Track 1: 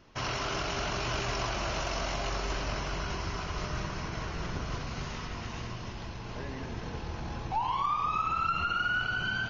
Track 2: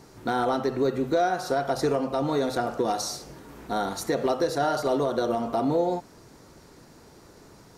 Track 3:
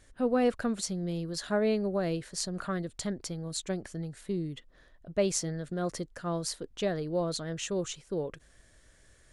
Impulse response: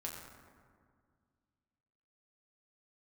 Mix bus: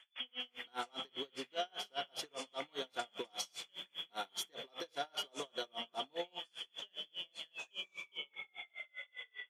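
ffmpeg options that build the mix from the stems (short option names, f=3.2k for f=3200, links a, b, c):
-filter_complex "[0:a]alimiter=level_in=6dB:limit=-24dB:level=0:latency=1:release=141,volume=-6dB,volume=-2dB,asplit=2[a][b];[b]volume=-22.5dB[c];[1:a]adelay=400,volume=-6.5dB[d];[2:a]acompressor=threshold=-37dB:ratio=2,volume=1dB,asplit=2[e][f];[f]volume=-10dB[g];[a][e]amix=inputs=2:normalize=0,lowpass=f=3k:t=q:w=0.5098,lowpass=f=3k:t=q:w=0.6013,lowpass=f=3k:t=q:w=0.9,lowpass=f=3k:t=q:w=2.563,afreqshift=-3500,acompressor=threshold=-41dB:ratio=2,volume=0dB[h];[3:a]atrim=start_sample=2205[i];[c][g]amix=inputs=2:normalize=0[j];[j][i]afir=irnorm=-1:irlink=0[k];[d][h][k]amix=inputs=3:normalize=0,highpass=f=1.1k:p=1,aeval=exprs='val(0)*pow(10,-35*(0.5-0.5*cos(2*PI*5*n/s))/20)':c=same"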